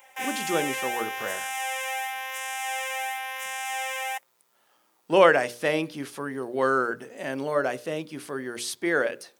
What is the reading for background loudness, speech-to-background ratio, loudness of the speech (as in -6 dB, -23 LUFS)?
-30.5 LUFS, 4.0 dB, -26.5 LUFS